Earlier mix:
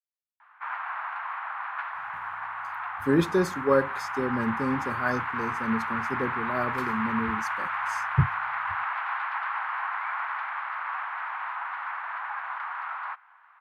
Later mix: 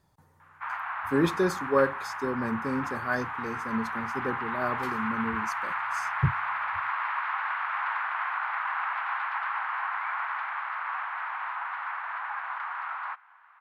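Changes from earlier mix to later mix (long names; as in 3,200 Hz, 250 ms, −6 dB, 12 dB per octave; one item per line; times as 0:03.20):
speech: entry −1.95 s
master: add low-shelf EQ 390 Hz −3.5 dB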